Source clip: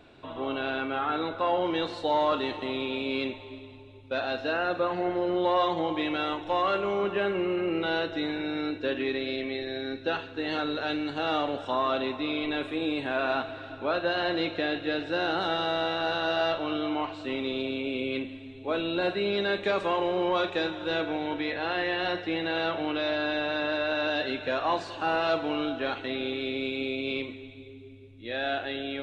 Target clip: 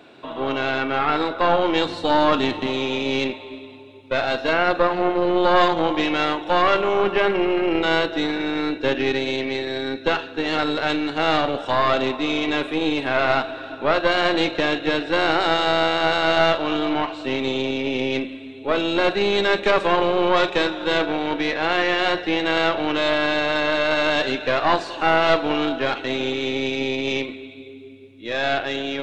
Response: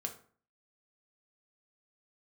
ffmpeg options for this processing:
-filter_complex "[0:a]asplit=3[link_01][link_02][link_03];[link_01]afade=type=out:start_time=1.84:duration=0.02[link_04];[link_02]asubboost=boost=5.5:cutoff=240,afade=type=in:start_time=1.84:duration=0.02,afade=type=out:start_time=2.66:duration=0.02[link_05];[link_03]afade=type=in:start_time=2.66:duration=0.02[link_06];[link_04][link_05][link_06]amix=inputs=3:normalize=0,highpass=180,aeval=exprs='0.188*(cos(1*acos(clip(val(0)/0.188,-1,1)))-cos(1*PI/2))+0.0841*(cos(2*acos(clip(val(0)/0.188,-1,1)))-cos(2*PI/2))+0.00119*(cos(6*acos(clip(val(0)/0.188,-1,1)))-cos(6*PI/2))+0.00168*(cos(7*acos(clip(val(0)/0.188,-1,1)))-cos(7*PI/2))':channel_layout=same,volume=8dB"

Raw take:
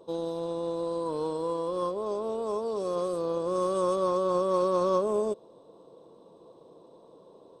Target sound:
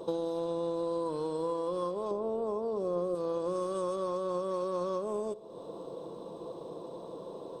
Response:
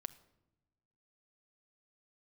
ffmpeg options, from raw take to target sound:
-filter_complex "[0:a]asettb=1/sr,asplit=3[link_01][link_02][link_03];[link_01]atrim=end=2.114[link_04];[link_02]atrim=start=2.11:end=3.15,asetpts=PTS-STARTPTS,afade=type=in:duration=0.004:curve=qsin,afade=type=out:start_time=1.036:duration=0.004:curve=qsin,tiltshelf=frequency=1400:gain=7[link_05];[link_03]atrim=start=3.146[link_06];[link_04][link_05]acrossfade=duration=0.004:curve1=hsin:curve2=qsin[link_07];[link_07][link_06]acrossfade=duration=0.004:curve1=qsin:curve2=hsin,acompressor=threshold=-42dB:ratio=6,asplit=2[link_08][link_09];[1:a]atrim=start_sample=2205[link_10];[link_09][link_10]afir=irnorm=-1:irlink=0,volume=13.5dB[link_11];[link_08][link_11]amix=inputs=2:normalize=0,volume=-2dB"

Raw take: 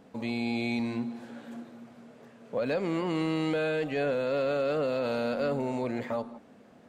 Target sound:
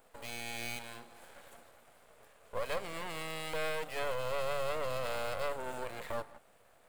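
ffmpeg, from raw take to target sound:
ffmpeg -i in.wav -af "highpass=frequency=500:width=0.5412,highpass=frequency=500:width=1.3066,aeval=exprs='max(val(0),0)':channel_layout=same,aexciter=amount=4.6:drive=2.7:freq=7800" out.wav

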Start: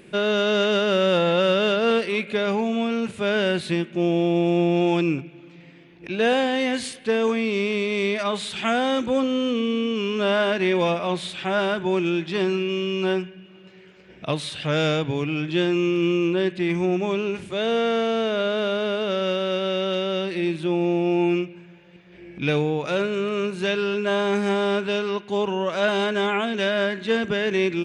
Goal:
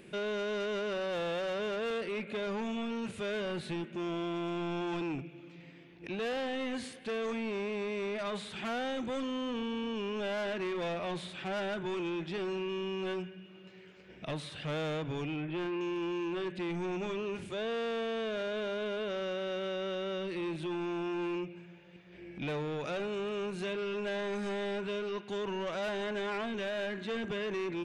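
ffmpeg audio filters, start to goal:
ffmpeg -i in.wav -filter_complex "[0:a]asettb=1/sr,asplit=3[link_01][link_02][link_03];[link_01]atrim=end=15.364[link_04];[link_02]atrim=start=15.36:end=15.81,asetpts=PTS-STARTPTS,afade=type=in:duration=0.004:curve=qsin,afade=type=out:start_time=0.446:duration=0.004:curve=qsin,lowpass=frequency=2600:width=0.5412,lowpass=frequency=2600:width=1.3066[link_05];[link_03]atrim=start=15.806[link_06];[link_04][link_05]acrossfade=duration=0.004:curve1=hsin:curve2=qsin[link_07];[link_07][link_06]acrossfade=duration=0.004:curve1=qsin:curve2=hsin,acrossover=split=2000[link_08][link_09];[link_08]asoftclip=type=tanh:threshold=-27.5dB[link_10];[link_09]acompressor=threshold=-41dB:ratio=6[link_11];[link_10][link_11]amix=inputs=2:normalize=0,volume=-5.5dB" out.wav

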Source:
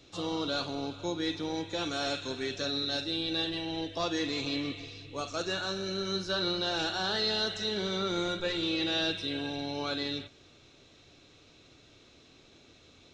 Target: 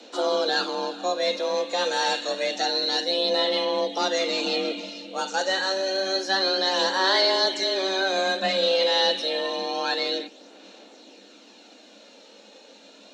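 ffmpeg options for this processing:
ffmpeg -i in.wav -filter_complex "[0:a]asettb=1/sr,asplit=3[link_01][link_02][link_03];[link_01]atrim=end=3.964[link_04];[link_02]atrim=start=3.96:end=4.8,asetpts=PTS-STARTPTS,afade=type=in:duration=0.004:curve=qsin,afade=type=out:start_time=0.836:duration=0.004:curve=qsin,asubboost=boost=5.5:cutoff=250[link_05];[link_03]atrim=start=4.796[link_06];[link_04][link_05]acrossfade=duration=0.004:curve1=hsin:curve2=qsin[link_07];[link_07][link_06]acrossfade=duration=0.004:curve1=qsin:curve2=hsin,aphaser=in_gain=1:out_gain=1:delay=3:decay=0.34:speed=0.28:type=sinusoidal,afreqshift=190,volume=7.5dB" out.wav

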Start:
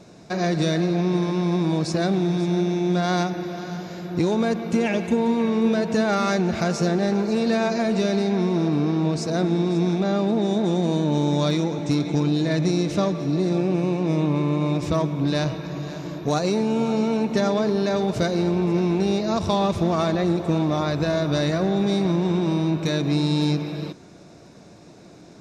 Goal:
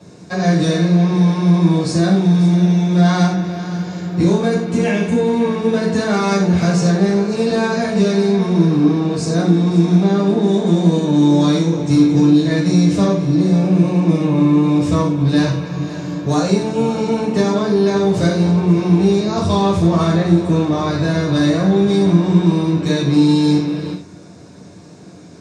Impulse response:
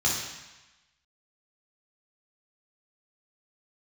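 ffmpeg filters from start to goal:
-filter_complex "[1:a]atrim=start_sample=2205,afade=type=out:start_time=0.2:duration=0.01,atrim=end_sample=9261,asetrate=57330,aresample=44100[link_01];[0:a][link_01]afir=irnorm=-1:irlink=0,volume=-4dB"

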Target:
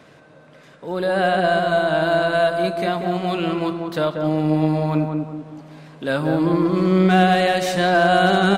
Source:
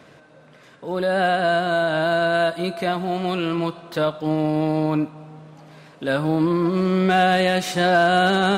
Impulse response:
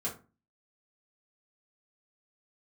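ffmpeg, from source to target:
-filter_complex "[0:a]aeval=exprs='0.398*(cos(1*acos(clip(val(0)/0.398,-1,1)))-cos(1*PI/2))+0.00562*(cos(2*acos(clip(val(0)/0.398,-1,1)))-cos(2*PI/2))':channel_layout=same,asplit=2[link_01][link_02];[link_02]adelay=188,lowpass=frequency=1000:poles=1,volume=-3dB,asplit=2[link_03][link_04];[link_04]adelay=188,lowpass=frequency=1000:poles=1,volume=0.47,asplit=2[link_05][link_06];[link_06]adelay=188,lowpass=frequency=1000:poles=1,volume=0.47,asplit=2[link_07][link_08];[link_08]adelay=188,lowpass=frequency=1000:poles=1,volume=0.47,asplit=2[link_09][link_10];[link_10]adelay=188,lowpass=frequency=1000:poles=1,volume=0.47,asplit=2[link_11][link_12];[link_12]adelay=188,lowpass=frequency=1000:poles=1,volume=0.47[link_13];[link_03][link_05][link_07][link_09][link_11][link_13]amix=inputs=6:normalize=0[link_14];[link_01][link_14]amix=inputs=2:normalize=0"

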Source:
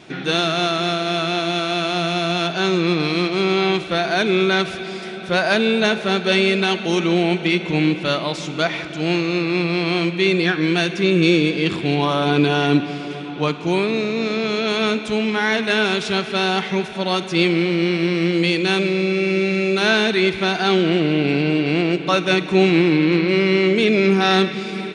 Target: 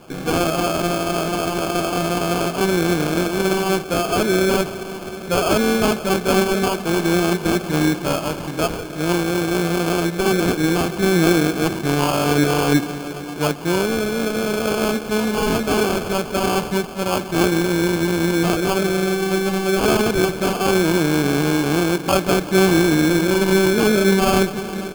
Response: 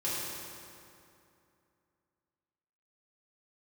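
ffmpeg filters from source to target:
-af "acrusher=samples=23:mix=1:aa=0.000001"

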